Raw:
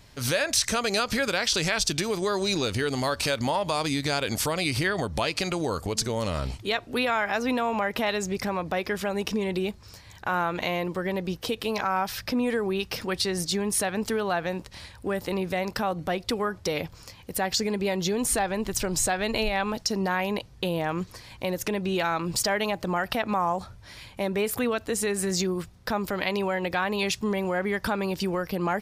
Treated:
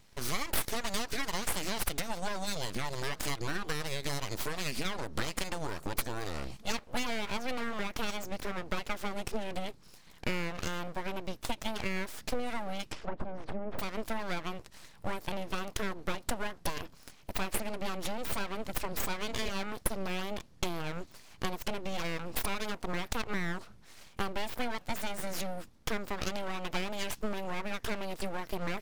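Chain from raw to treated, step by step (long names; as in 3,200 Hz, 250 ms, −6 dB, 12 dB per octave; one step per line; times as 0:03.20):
transient designer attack +7 dB, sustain +1 dB
full-wave rectification
0:12.86–0:13.79: treble cut that deepens with the level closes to 790 Hz, closed at −21 dBFS
level −7.5 dB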